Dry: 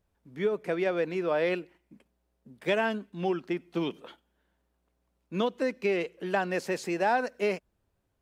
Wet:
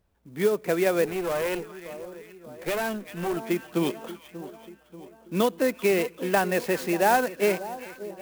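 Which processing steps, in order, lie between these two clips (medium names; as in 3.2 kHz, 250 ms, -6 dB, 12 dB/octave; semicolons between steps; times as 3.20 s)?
two-band feedback delay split 1.1 kHz, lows 586 ms, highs 388 ms, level -14.5 dB; 1.05–3.37 s: valve stage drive 28 dB, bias 0.55; sampling jitter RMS 0.034 ms; trim +5 dB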